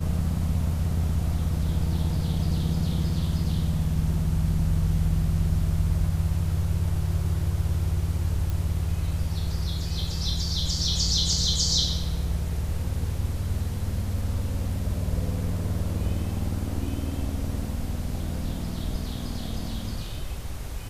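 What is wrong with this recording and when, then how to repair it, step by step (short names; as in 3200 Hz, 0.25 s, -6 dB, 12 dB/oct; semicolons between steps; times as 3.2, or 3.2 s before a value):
8.5 pop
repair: de-click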